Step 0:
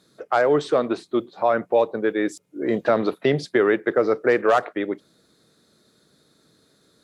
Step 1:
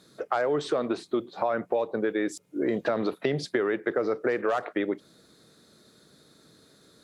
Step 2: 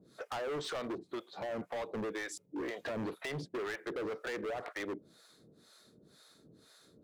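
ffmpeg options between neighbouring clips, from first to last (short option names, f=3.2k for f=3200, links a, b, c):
-filter_complex "[0:a]asplit=2[a][b];[b]alimiter=limit=-15.5dB:level=0:latency=1:release=24,volume=1.5dB[c];[a][c]amix=inputs=2:normalize=0,acompressor=threshold=-20dB:ratio=4,volume=-4dB"
-filter_complex "[0:a]acrossover=split=610[a][b];[a]aeval=exprs='val(0)*(1-1/2+1/2*cos(2*PI*2*n/s))':c=same[c];[b]aeval=exprs='val(0)*(1-1/2-1/2*cos(2*PI*2*n/s))':c=same[d];[c][d]amix=inputs=2:normalize=0,volume=35dB,asoftclip=hard,volume=-35dB"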